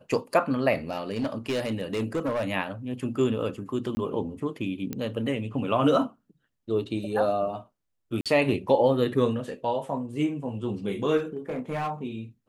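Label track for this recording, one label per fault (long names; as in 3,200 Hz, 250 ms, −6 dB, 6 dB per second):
0.890000	2.440000	clipping −23 dBFS
3.950000	3.970000	drop-out 20 ms
4.930000	4.930000	click −17 dBFS
8.210000	8.260000	drop-out 47 ms
11.170000	11.910000	clipping −25.5 dBFS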